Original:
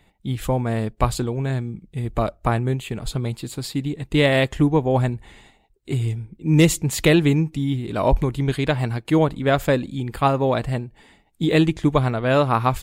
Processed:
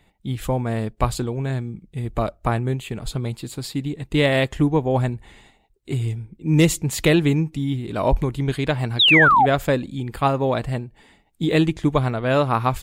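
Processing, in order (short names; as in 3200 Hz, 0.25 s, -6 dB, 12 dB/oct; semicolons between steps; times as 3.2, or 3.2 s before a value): painted sound fall, 8.99–9.46, 700–4000 Hz -13 dBFS; gain -1 dB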